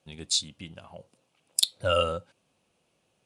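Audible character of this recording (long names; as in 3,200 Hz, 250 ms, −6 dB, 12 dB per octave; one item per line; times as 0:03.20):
background noise floor −74 dBFS
spectral slope −3.0 dB per octave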